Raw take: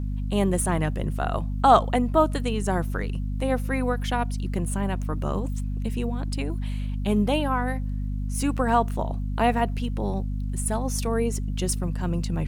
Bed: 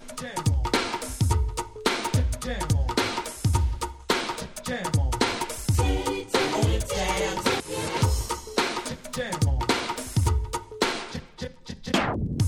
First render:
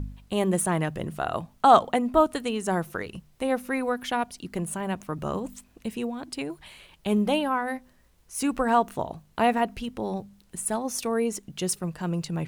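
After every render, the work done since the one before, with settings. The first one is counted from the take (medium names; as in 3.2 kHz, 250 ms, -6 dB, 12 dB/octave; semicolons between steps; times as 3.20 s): de-hum 50 Hz, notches 5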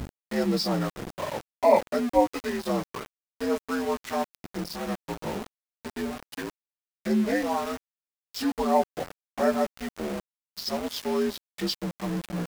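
frequency axis rescaled in octaves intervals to 82%; small samples zeroed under -32 dBFS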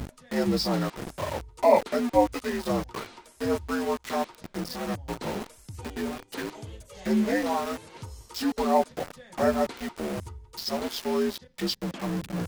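add bed -18.5 dB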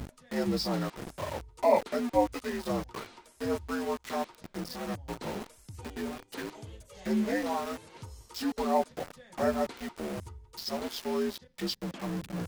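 trim -4.5 dB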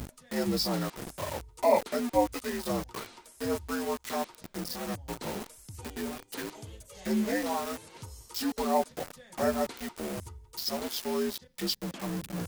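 treble shelf 6.2 kHz +10 dB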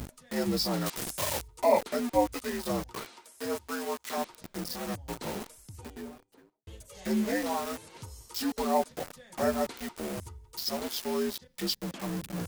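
0.86–1.48 s: treble shelf 2.2 kHz +11.5 dB; 3.05–4.18 s: high-pass 330 Hz 6 dB/octave; 5.42–6.67 s: studio fade out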